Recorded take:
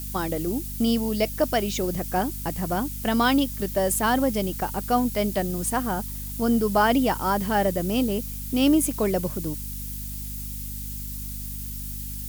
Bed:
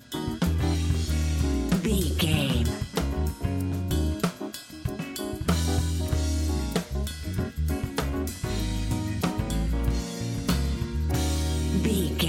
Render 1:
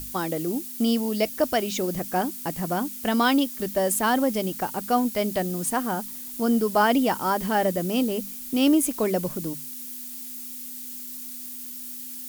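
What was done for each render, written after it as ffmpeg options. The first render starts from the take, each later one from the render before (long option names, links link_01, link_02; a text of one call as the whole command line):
ffmpeg -i in.wav -af "bandreject=frequency=50:width_type=h:width=6,bandreject=frequency=100:width_type=h:width=6,bandreject=frequency=150:width_type=h:width=6,bandreject=frequency=200:width_type=h:width=6" out.wav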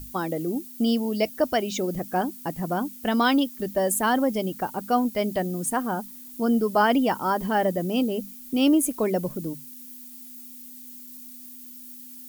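ffmpeg -i in.wav -af "afftdn=noise_reduction=9:noise_floor=-37" out.wav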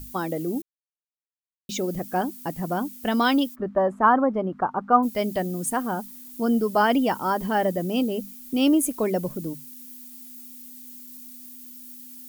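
ffmpeg -i in.wav -filter_complex "[0:a]asplit=3[link_01][link_02][link_03];[link_01]afade=type=out:start_time=3.54:duration=0.02[link_04];[link_02]lowpass=frequency=1200:width_type=q:width=3.4,afade=type=in:start_time=3.54:duration=0.02,afade=type=out:start_time=5.02:duration=0.02[link_05];[link_03]afade=type=in:start_time=5.02:duration=0.02[link_06];[link_04][link_05][link_06]amix=inputs=3:normalize=0,asplit=3[link_07][link_08][link_09];[link_07]atrim=end=0.62,asetpts=PTS-STARTPTS,afade=type=out:start_time=0.616:duration=0.004:curve=hsin[link_10];[link_08]atrim=start=0.62:end=1.69,asetpts=PTS-STARTPTS,volume=0[link_11];[link_09]atrim=start=1.69,asetpts=PTS-STARTPTS,afade=type=in:duration=0.004:curve=hsin[link_12];[link_10][link_11][link_12]concat=n=3:v=0:a=1" out.wav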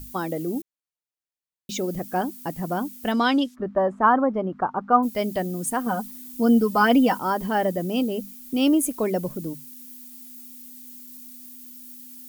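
ffmpeg -i in.wav -filter_complex "[0:a]asettb=1/sr,asplit=3[link_01][link_02][link_03];[link_01]atrim=end=3.124[link_04];[link_02]atrim=start=3.12:end=4.91,asetpts=PTS-STARTPTS,afade=type=in:duration=0.004:curve=qsin,afade=type=out:start_time=1.786:duration=0.004:curve=qsin,lowpass=7000[link_05];[link_03]atrim=start=4.906[link_06];[link_04][link_05]acrossfade=duration=0.004:curve1=hsin:curve2=qsin[link_07];[link_07][link_06]acrossfade=duration=0.004:curve1=qsin:curve2=hsin,asettb=1/sr,asplit=3[link_08][link_09][link_10];[link_08]atrim=end=5.864[link_11];[link_09]atrim=start=5.86:end=7.19,asetpts=PTS-STARTPTS,afade=type=in:duration=0.004:curve=qsin,afade=type=out:start_time=1.326:duration=0.004:curve=qsin,aecho=1:1:4:0.78,atrim=end_sample=58653[link_12];[link_10]atrim=start=7.186[link_13];[link_11][link_12]acrossfade=duration=0.004:curve1=hsin:curve2=qsin[link_14];[link_14][link_13]acrossfade=duration=0.004:curve1=qsin:curve2=hsin" out.wav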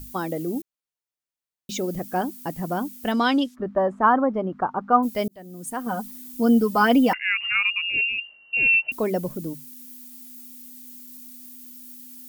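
ffmpeg -i in.wav -filter_complex "[0:a]asettb=1/sr,asplit=3[link_01][link_02][link_03];[link_01]atrim=end=7.134[link_04];[link_02]atrim=start=7.13:end=8.92,asetpts=PTS-STARTPTS,afade=type=in:duration=0.004:curve=qsin,afade=type=out:start_time=1.786:duration=0.004:curve=qsin,lowpass=frequency=2600:width_type=q:width=0.5098,lowpass=frequency=2600:width_type=q:width=0.6013,lowpass=frequency=2600:width_type=q:width=0.9,lowpass=frequency=2600:width_type=q:width=2.563,afreqshift=-3000[link_05];[link_03]atrim=start=8.916[link_06];[link_04][link_05]acrossfade=duration=0.004:curve1=hsin:curve2=qsin[link_07];[link_07][link_06]acrossfade=duration=0.004:curve1=qsin:curve2=hsin,asplit=2[link_08][link_09];[link_08]atrim=end=5.28,asetpts=PTS-STARTPTS,afade=type=out:start_time=5.276:duration=0.004:curve=hsin[link_10];[link_09]atrim=start=5.28,asetpts=PTS-STARTPTS,afade=type=in:duration=0.82[link_11];[link_10][link_11]concat=n=2:v=0:a=1" out.wav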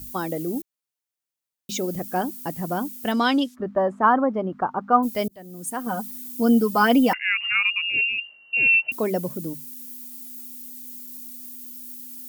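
ffmpeg -i in.wav -af "highpass=52,highshelf=frequency=5400:gain=4.5" out.wav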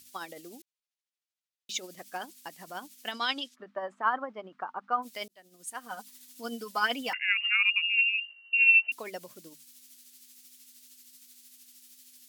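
ffmpeg -i in.wav -af "bandpass=frequency=3400:width_type=q:width=0.75:csg=0,tremolo=f=13:d=0.43" out.wav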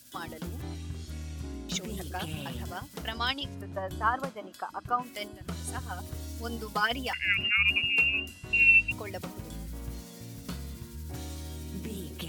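ffmpeg -i in.wav -i bed.wav -filter_complex "[1:a]volume=-13.5dB[link_01];[0:a][link_01]amix=inputs=2:normalize=0" out.wav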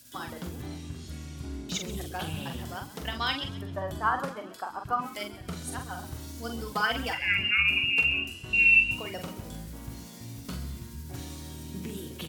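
ffmpeg -i in.wav -filter_complex "[0:a]asplit=2[link_01][link_02];[link_02]adelay=44,volume=-6dB[link_03];[link_01][link_03]amix=inputs=2:normalize=0,asplit=5[link_04][link_05][link_06][link_07][link_08];[link_05]adelay=131,afreqshift=59,volume=-16dB[link_09];[link_06]adelay=262,afreqshift=118,volume=-23.7dB[link_10];[link_07]adelay=393,afreqshift=177,volume=-31.5dB[link_11];[link_08]adelay=524,afreqshift=236,volume=-39.2dB[link_12];[link_04][link_09][link_10][link_11][link_12]amix=inputs=5:normalize=0" out.wav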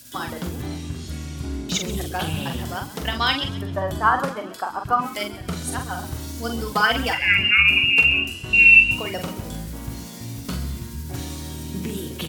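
ffmpeg -i in.wav -af "volume=8.5dB" out.wav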